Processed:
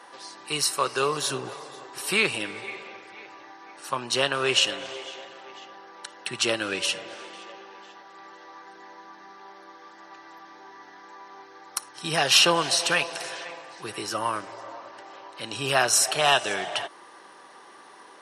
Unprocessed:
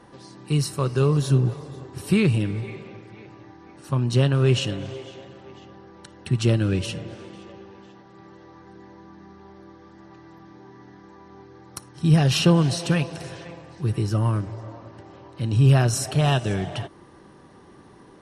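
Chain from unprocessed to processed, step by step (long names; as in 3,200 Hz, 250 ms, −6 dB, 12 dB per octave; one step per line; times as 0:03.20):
high-pass filter 770 Hz 12 dB per octave
level +7.5 dB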